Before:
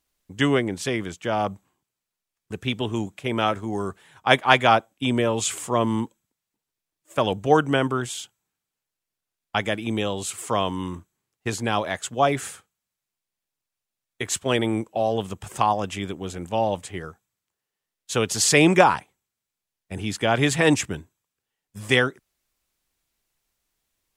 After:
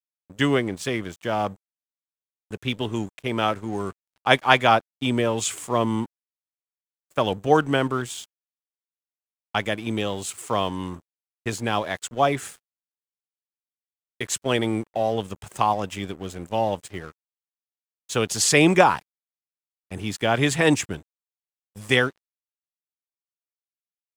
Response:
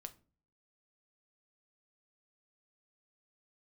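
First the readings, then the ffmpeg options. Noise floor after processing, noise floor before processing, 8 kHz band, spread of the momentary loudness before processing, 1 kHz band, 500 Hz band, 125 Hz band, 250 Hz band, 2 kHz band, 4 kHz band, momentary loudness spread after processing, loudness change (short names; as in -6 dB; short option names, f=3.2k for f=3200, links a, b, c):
under -85 dBFS, under -85 dBFS, -1.0 dB, 16 LU, -0.5 dB, -0.5 dB, -0.5 dB, -0.5 dB, -0.5 dB, -0.5 dB, 15 LU, -0.5 dB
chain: -af "aeval=exprs='sgn(val(0))*max(abs(val(0))-0.00631,0)':c=same"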